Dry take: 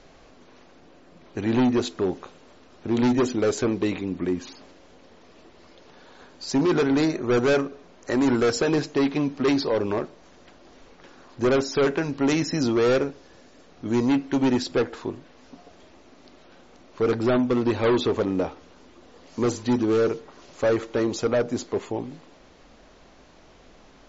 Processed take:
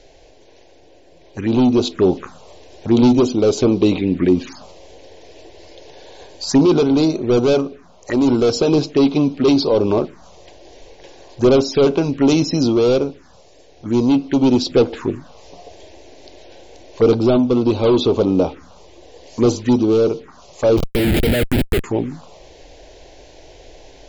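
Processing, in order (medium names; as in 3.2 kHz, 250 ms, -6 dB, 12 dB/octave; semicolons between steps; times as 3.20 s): 20.77–21.84 s: Schmitt trigger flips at -28 dBFS; touch-sensitive phaser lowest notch 190 Hz, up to 1.8 kHz, full sweep at -22 dBFS; gain riding within 3 dB 0.5 s; trim +9 dB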